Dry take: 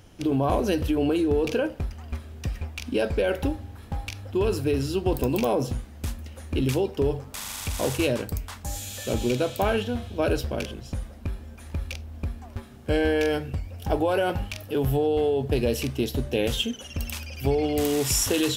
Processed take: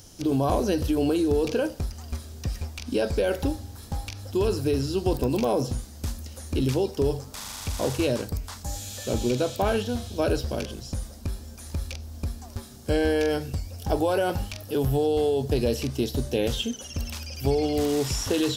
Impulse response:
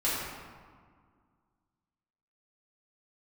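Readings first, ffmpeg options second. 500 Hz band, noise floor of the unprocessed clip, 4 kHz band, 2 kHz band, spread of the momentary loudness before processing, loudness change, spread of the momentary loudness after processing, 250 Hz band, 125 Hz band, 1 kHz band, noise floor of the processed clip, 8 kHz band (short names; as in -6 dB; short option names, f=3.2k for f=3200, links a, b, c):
0.0 dB, -44 dBFS, -1.5 dB, -3.0 dB, 12 LU, -0.5 dB, 12 LU, 0.0 dB, 0.0 dB, -0.5 dB, -43 dBFS, -3.0 dB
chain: -filter_complex "[0:a]highshelf=f=3.6k:t=q:w=1.5:g=11.5,acrossover=split=3000[a][b];[b]acompressor=threshold=-40dB:ratio=4:attack=1:release=60[c];[a][c]amix=inputs=2:normalize=0"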